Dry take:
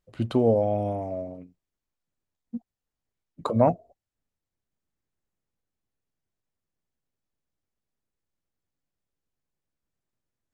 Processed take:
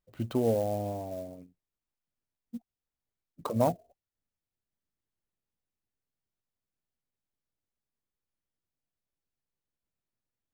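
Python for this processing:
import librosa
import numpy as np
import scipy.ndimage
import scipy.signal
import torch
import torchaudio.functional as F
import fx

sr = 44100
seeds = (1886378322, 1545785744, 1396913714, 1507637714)

y = fx.clock_jitter(x, sr, seeds[0], jitter_ms=0.025)
y = F.gain(torch.from_numpy(y), -6.0).numpy()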